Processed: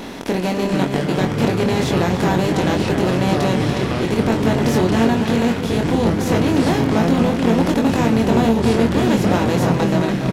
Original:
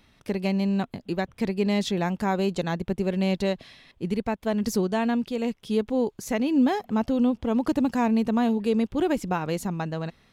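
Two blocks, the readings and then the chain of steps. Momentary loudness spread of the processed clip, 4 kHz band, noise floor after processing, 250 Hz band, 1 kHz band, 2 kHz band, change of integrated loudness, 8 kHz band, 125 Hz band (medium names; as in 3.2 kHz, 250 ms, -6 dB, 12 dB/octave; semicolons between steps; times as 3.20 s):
4 LU, +11.0 dB, -23 dBFS, +7.5 dB, +9.0 dB, +10.5 dB, +8.5 dB, +10.0 dB, +13.5 dB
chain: spectral levelling over time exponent 0.4; wow and flutter 23 cents; doubling 22 ms -4 dB; ever faster or slower copies 346 ms, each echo -5 st, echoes 3; echo from a far wall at 49 m, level -7 dB; trim -1 dB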